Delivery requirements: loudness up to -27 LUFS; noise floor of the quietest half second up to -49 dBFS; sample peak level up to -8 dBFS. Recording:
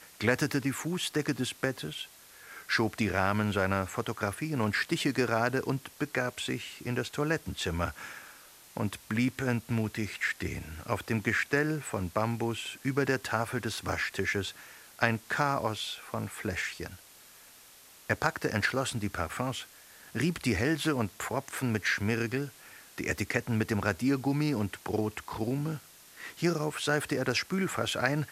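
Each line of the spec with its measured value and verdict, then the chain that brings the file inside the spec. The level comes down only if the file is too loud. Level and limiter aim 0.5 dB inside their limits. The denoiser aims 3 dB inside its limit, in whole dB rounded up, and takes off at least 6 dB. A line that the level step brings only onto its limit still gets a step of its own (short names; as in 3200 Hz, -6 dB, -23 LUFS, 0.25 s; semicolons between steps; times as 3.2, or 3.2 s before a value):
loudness -31.5 LUFS: OK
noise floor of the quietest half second -55 dBFS: OK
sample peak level -7.0 dBFS: fail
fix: limiter -8.5 dBFS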